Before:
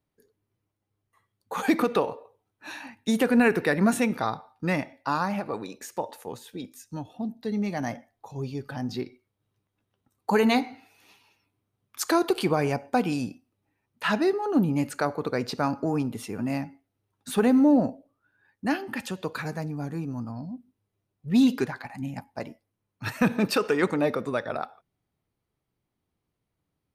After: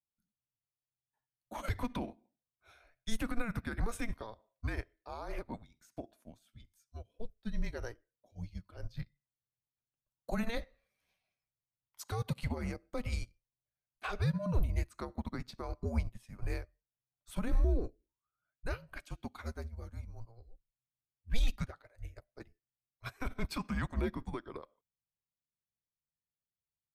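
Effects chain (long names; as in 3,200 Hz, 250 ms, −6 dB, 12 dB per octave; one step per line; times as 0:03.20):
frequency shifter −230 Hz
brickwall limiter −20.5 dBFS, peak gain reduction 11.5 dB
expander for the loud parts 2.5 to 1, over −39 dBFS
level +2 dB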